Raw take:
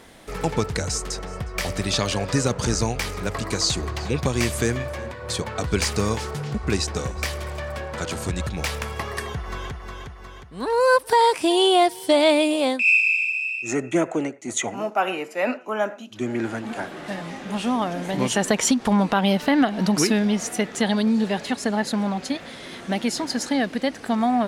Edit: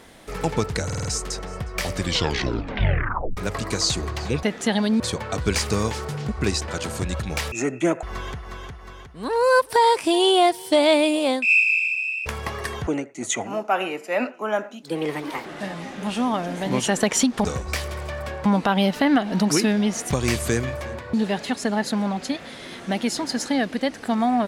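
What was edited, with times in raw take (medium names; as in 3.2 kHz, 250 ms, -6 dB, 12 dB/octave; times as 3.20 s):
0.85 s: stutter 0.05 s, 5 plays
1.73 s: tape stop 1.44 s
4.23–5.26 s: swap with 20.57–21.14 s
6.94–7.95 s: move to 18.92 s
8.79–9.40 s: swap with 13.63–14.14 s
16.10–16.93 s: speed 133%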